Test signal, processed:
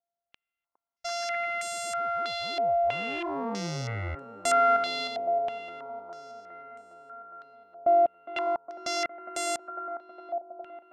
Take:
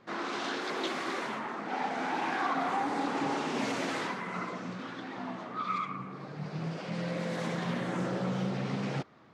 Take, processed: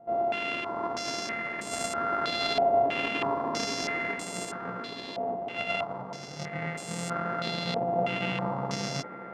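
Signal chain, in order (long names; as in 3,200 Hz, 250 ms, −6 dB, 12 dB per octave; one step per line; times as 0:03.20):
samples sorted by size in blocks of 64 samples
delay with a band-pass on its return 410 ms, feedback 72%, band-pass 550 Hz, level −8 dB
low-pass on a step sequencer 3.1 Hz 710–8,000 Hz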